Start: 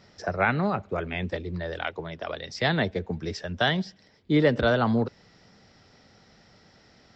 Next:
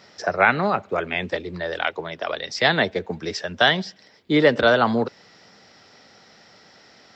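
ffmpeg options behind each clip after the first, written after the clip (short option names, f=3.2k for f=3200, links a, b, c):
-af "highpass=f=450:p=1,volume=8dB"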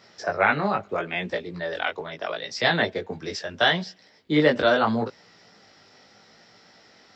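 -af "flanger=delay=17:depth=3.3:speed=0.76"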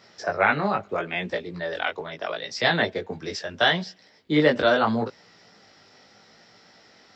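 -af anull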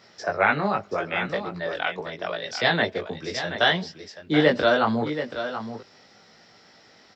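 -af "aecho=1:1:729:0.316"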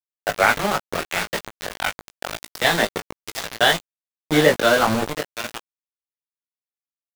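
-filter_complex "[0:a]aeval=exprs='val(0)*gte(abs(val(0)),0.075)':c=same,asplit=2[a][b];[b]adelay=18,volume=-11dB[c];[a][c]amix=inputs=2:normalize=0,volume=3.5dB"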